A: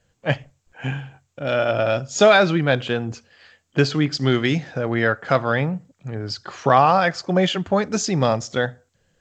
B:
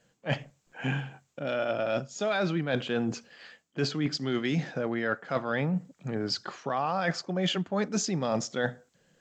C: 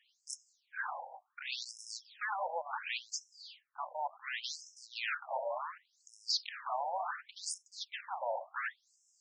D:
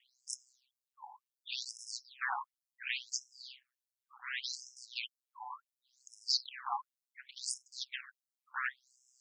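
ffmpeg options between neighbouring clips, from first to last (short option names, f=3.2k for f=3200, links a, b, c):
-af "lowshelf=f=120:t=q:w=1.5:g=-12.5,areverse,acompressor=threshold=-25dB:ratio=12,areverse"
-filter_complex "[0:a]acrossover=split=140[a][b];[b]aeval=exprs='0.0316*(abs(mod(val(0)/0.0316+3,4)-2)-1)':c=same[c];[a][c]amix=inputs=2:normalize=0,afftfilt=real='re*between(b*sr/1024,690*pow(7400/690,0.5+0.5*sin(2*PI*0.69*pts/sr))/1.41,690*pow(7400/690,0.5+0.5*sin(2*PI*0.69*pts/sr))*1.41)':imag='im*between(b*sr/1024,690*pow(7400/690,0.5+0.5*sin(2*PI*0.69*pts/sr))/1.41,690*pow(7400/690,0.5+0.5*sin(2*PI*0.69*pts/sr))*1.41)':win_size=1024:overlap=0.75,volume=5.5dB"
-af "aeval=exprs='val(0)*sin(2*PI*64*n/s)':c=same,afftfilt=real='re*gte(b*sr/1024,720*pow(4000/720,0.5+0.5*sin(2*PI*1.6*pts/sr)))':imag='im*gte(b*sr/1024,720*pow(4000/720,0.5+0.5*sin(2*PI*1.6*pts/sr)))':win_size=1024:overlap=0.75,volume=4.5dB"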